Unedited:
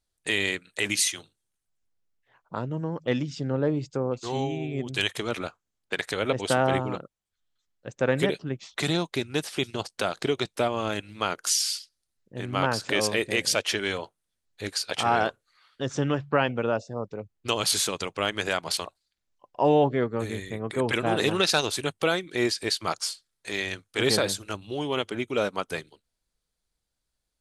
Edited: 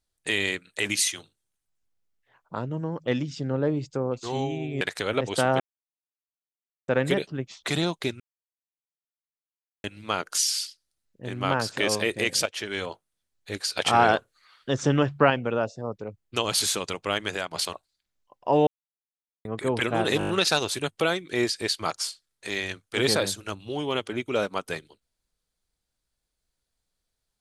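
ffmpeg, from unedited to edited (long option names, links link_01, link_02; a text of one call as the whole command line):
ffmpeg -i in.wav -filter_complex "[0:a]asplit=17[link_01][link_02][link_03][link_04][link_05][link_06][link_07][link_08][link_09][link_10][link_11][link_12][link_13][link_14][link_15][link_16][link_17];[link_01]atrim=end=4.812[link_18];[link_02]atrim=start=5.928:end=6.72,asetpts=PTS-STARTPTS,afade=type=out:start_time=0.788:duration=0.004:curve=hsin[link_19];[link_03]atrim=start=6.72:end=8,asetpts=PTS-STARTPTS,volume=0[link_20];[link_04]atrim=start=8:end=9.32,asetpts=PTS-STARTPTS,afade=type=in:duration=0.004:curve=hsin,afade=type=out:start_time=1.316:duration=0.004:curve=hsin[link_21];[link_05]atrim=start=9.32:end=10.96,asetpts=PTS-STARTPTS,volume=0[link_22];[link_06]atrim=start=10.96:end=13.58,asetpts=PTS-STARTPTS,afade=type=in:duration=0.004:curve=hsin,afade=type=out:start_time=2.616:duration=0.004:curve=hsin:silence=0.251189[link_23];[link_07]atrim=start=13.58:end=14.822,asetpts=PTS-STARTPTS,afade=type=in:duration=0.44:silence=0.251189[link_24];[link_08]atrim=start=14.818:end=16.422,asetpts=PTS-STARTPTS,volume=4dB[link_25];[link_09]atrim=start=16.418:end=18.63,asetpts=PTS-STARTPTS,afade=type=out:start_time=1.922:duration=0.29:silence=0.446684[link_26];[link_10]atrim=start=18.63:end=19.79,asetpts=PTS-STARTPTS,afade=type=in:duration=0.004:curve=hsin:silence=0.446684,afade=type=out:start_time=1.156:duration=0.004:curve=hsin[link_27];[link_11]atrim=start=19.79:end=20.57,asetpts=PTS-STARTPTS,volume=0[link_28];[link_12]atrim=start=20.57:end=21.332,asetpts=PTS-STARTPTS,afade=type=in:duration=0.004:curve=hsin[link_29];[link_13]atrim=start=21.308:end=21.332[link_30];[link_14]atrim=start=21.308:end=21.332[link_31];[link_15]atrim=start=21.308:end=21.332[link_32];[link_16]atrim=start=21.308:end=21.332[link_33];[link_17]atrim=start=21.308[link_34];[link_19][link_20][link_21][link_22][link_23][link_24]concat=n=6:v=0:a=1[link_35];[link_18][link_35]acrossfade=duration=0.004:curve1=hsin:curve2=hsin[link_36];[link_36][link_25]acrossfade=duration=0.004:curve1=hsin:curve2=hsin[link_37];[link_26][link_27][link_28][link_29]concat=n=4:v=0:a=1[link_38];[link_37][link_38]acrossfade=duration=0.004:curve1=hsin:curve2=hsin[link_39];[link_39][link_30]acrossfade=duration=0.004:curve1=hsin:curve2=hsin[link_40];[link_40][link_31]acrossfade=duration=0.004:curve1=hsin:curve2=hsin[link_41];[link_41][link_32]acrossfade=duration=0.004:curve1=hsin:curve2=hsin[link_42];[link_42][link_33]acrossfade=duration=0.004:curve1=hsin:curve2=hsin[link_43];[link_43][link_34]acrossfade=duration=0.004:curve1=hsin:curve2=hsin" out.wav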